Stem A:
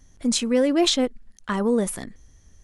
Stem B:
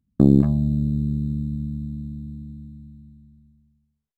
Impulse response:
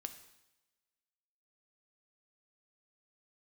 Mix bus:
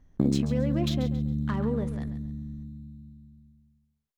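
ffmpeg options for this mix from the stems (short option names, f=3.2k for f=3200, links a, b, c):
-filter_complex "[0:a]alimiter=limit=-17.5dB:level=0:latency=1:release=474,adynamicsmooth=sensitivity=3:basefreq=2.3k,volume=-5dB,asplit=2[a][b];[b]volume=-12dB[c];[1:a]bandreject=f=8k:w=16,acompressor=threshold=-24dB:ratio=2.5,volume=-1dB[d];[c]aecho=0:1:137|274|411|548:1|0.31|0.0961|0.0298[e];[a][d][e]amix=inputs=3:normalize=0"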